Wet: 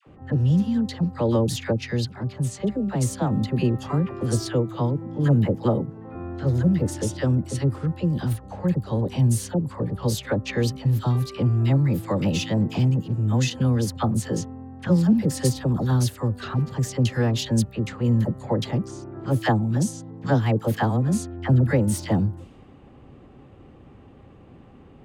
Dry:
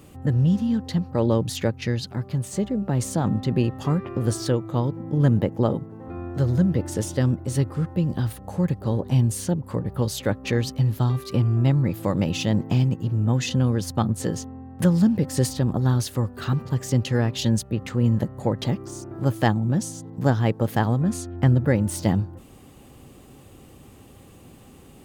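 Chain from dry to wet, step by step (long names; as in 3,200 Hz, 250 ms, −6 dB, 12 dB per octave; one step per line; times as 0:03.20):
all-pass dispersion lows, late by 67 ms, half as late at 860 Hz
low-pass that shuts in the quiet parts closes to 1,800 Hz, open at −19.5 dBFS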